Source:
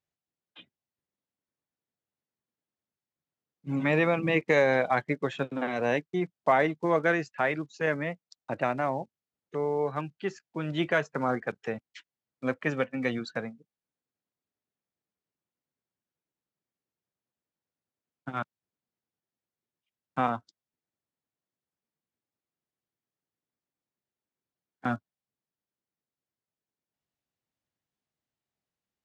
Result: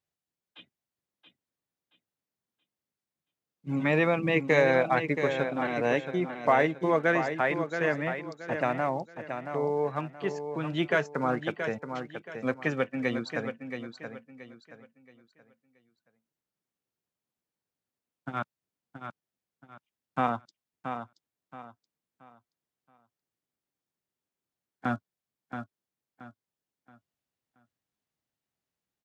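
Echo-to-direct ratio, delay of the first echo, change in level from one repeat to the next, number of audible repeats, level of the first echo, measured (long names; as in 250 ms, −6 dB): −7.5 dB, 676 ms, −10.0 dB, 3, −8.0 dB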